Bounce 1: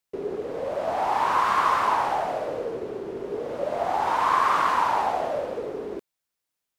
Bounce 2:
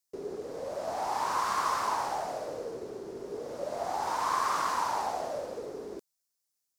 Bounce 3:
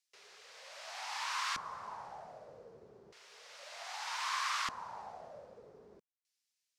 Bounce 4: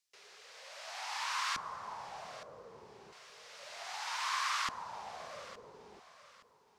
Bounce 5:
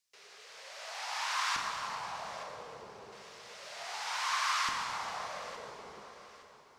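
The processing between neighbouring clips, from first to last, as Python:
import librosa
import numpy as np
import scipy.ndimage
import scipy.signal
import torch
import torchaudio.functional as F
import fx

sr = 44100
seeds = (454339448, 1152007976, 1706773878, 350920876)

y1 = fx.high_shelf_res(x, sr, hz=4000.0, db=9.0, q=1.5)
y1 = y1 * librosa.db_to_amplitude(-7.5)
y2 = fx.tone_stack(y1, sr, knobs='10-0-10')
y2 = fx.filter_lfo_bandpass(y2, sr, shape='square', hz=0.32, low_hz=230.0, high_hz=2600.0, q=1.3)
y2 = y2 * librosa.db_to_amplitude(9.0)
y3 = fx.echo_feedback(y2, sr, ms=868, feedback_pct=32, wet_db=-16.0)
y3 = y3 * librosa.db_to_amplitude(1.0)
y4 = fx.rev_plate(y3, sr, seeds[0], rt60_s=3.5, hf_ratio=0.85, predelay_ms=0, drr_db=1.0)
y4 = y4 * librosa.db_to_amplitude(1.0)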